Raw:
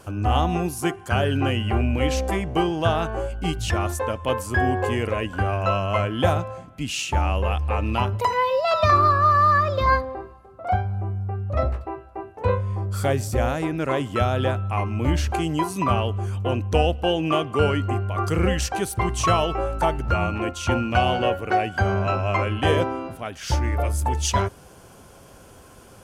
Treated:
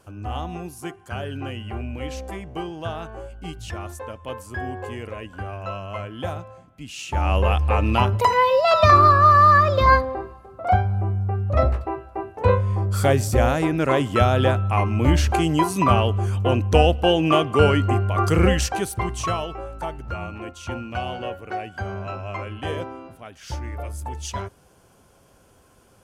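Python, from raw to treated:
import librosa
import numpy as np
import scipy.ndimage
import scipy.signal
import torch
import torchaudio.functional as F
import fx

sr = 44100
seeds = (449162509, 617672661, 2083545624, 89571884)

y = fx.gain(x, sr, db=fx.line((6.94, -9.0), (7.35, 4.0), (18.46, 4.0), (19.61, -8.5)))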